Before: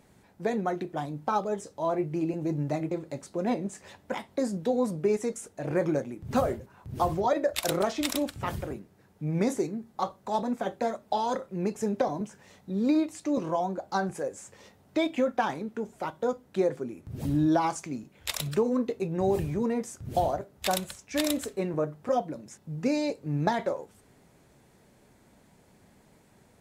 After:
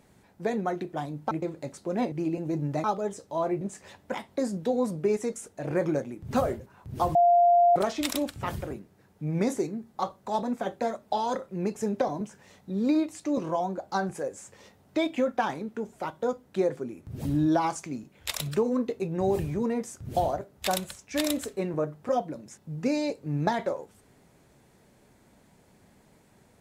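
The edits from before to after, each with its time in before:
1.31–2.08 swap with 2.8–3.61
7.15–7.76 bleep 697 Hz -16 dBFS

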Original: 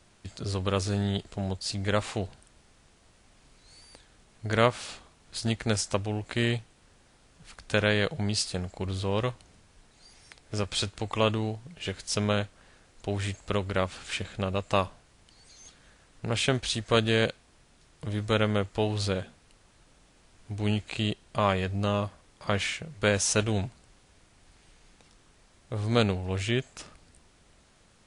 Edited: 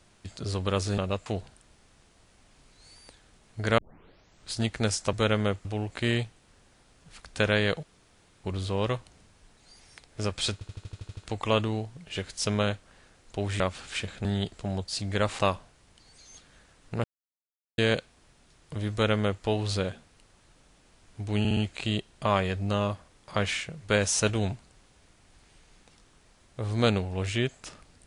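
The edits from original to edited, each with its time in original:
0.98–2.12 swap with 14.42–14.7
4.64 tape start 0.72 s
8.17–8.78 room tone
10.87 stutter 0.08 s, 9 plays
13.3–13.77 cut
16.35–17.09 mute
18.23–18.75 copy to 5.99
20.7 stutter 0.06 s, 4 plays

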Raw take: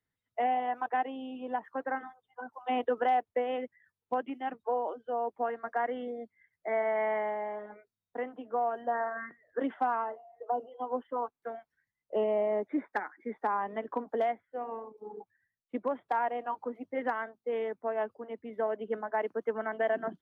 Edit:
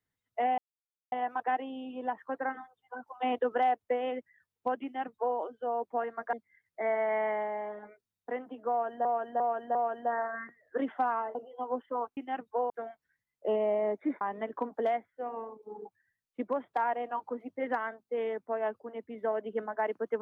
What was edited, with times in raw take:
0.58 insert silence 0.54 s
4.3–4.83 copy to 11.38
5.79–6.2 cut
8.57–8.92 loop, 4 plays
10.17–10.56 cut
12.89–13.56 cut

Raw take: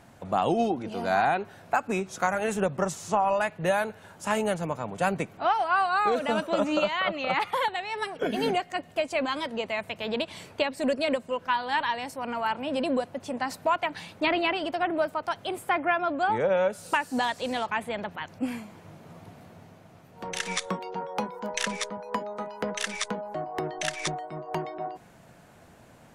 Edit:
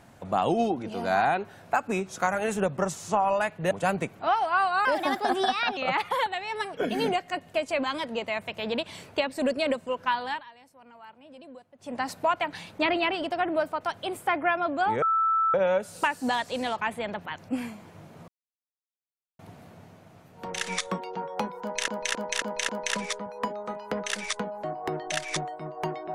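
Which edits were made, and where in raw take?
3.71–4.89 cut
6.03–7.19 speed 126%
11.65–13.4 dip -20 dB, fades 0.20 s
16.44 add tone 1320 Hz -20.5 dBFS 0.52 s
19.18 insert silence 1.11 s
21.4–21.67 loop, 5 plays

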